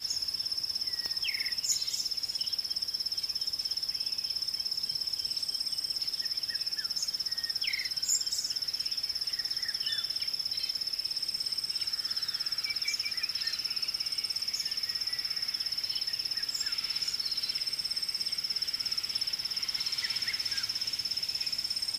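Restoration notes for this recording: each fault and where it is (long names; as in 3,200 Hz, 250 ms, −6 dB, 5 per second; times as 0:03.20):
0:01.06: click −23 dBFS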